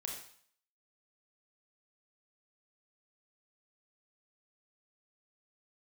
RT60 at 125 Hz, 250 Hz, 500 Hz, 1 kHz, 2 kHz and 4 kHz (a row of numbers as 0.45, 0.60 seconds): 0.50, 0.55, 0.55, 0.60, 0.60, 0.60 seconds